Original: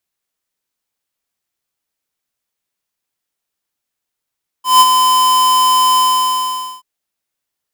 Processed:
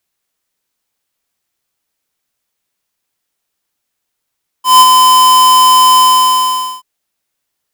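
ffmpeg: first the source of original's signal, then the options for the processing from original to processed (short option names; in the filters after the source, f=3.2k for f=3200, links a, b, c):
-f lavfi -i "aevalsrc='0.562*(2*lt(mod(1020*t,1),0.5)-1)':d=2.181:s=44100,afade=t=in:d=0.165,afade=t=out:st=0.165:d=0.039:silence=0.501,afade=t=out:st=1.33:d=0.851"
-af "acontrast=63"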